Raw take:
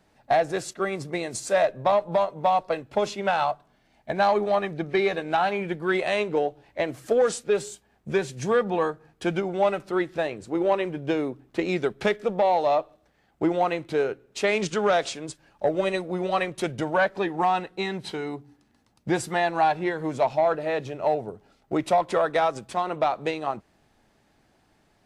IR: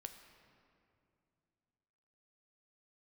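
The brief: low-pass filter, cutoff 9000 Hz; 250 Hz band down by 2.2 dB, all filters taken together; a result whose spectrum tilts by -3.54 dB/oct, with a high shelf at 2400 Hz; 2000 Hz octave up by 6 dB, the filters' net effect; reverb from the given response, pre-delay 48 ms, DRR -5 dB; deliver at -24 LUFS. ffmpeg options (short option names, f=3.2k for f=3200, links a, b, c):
-filter_complex "[0:a]lowpass=9k,equalizer=f=250:t=o:g=-4,equalizer=f=2k:t=o:g=5,highshelf=f=2.4k:g=5.5,asplit=2[a][b];[1:a]atrim=start_sample=2205,adelay=48[c];[b][c]afir=irnorm=-1:irlink=0,volume=10dB[d];[a][d]amix=inputs=2:normalize=0,volume=-5.5dB"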